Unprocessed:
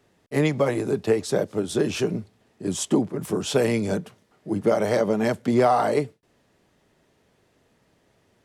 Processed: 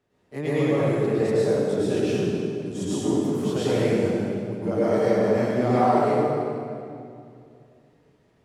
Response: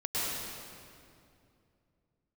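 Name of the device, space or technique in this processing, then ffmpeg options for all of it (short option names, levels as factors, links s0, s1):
swimming-pool hall: -filter_complex "[1:a]atrim=start_sample=2205[s0];[0:a][s0]afir=irnorm=-1:irlink=0,highshelf=f=4200:g=-6.5,asettb=1/sr,asplit=3[s1][s2][s3];[s1]atrim=end=1.804[s4];[s2]atrim=start=1.8:end=2.2,asetpts=PTS-STARTPTS,afade=t=in:d=0.004:c=qsin,afade=t=out:st=0.396:d=0.004:c=qsin,bandreject=f=1100:w=9.4[s5];[s3]atrim=start=2.196[s6];[s4][s5]acrossfade=d=0.004:c1=hsin:c2=qsin[s7];[s7][s6]acrossfade=d=0.004:c1=qsin:c2=hsin,volume=0.398"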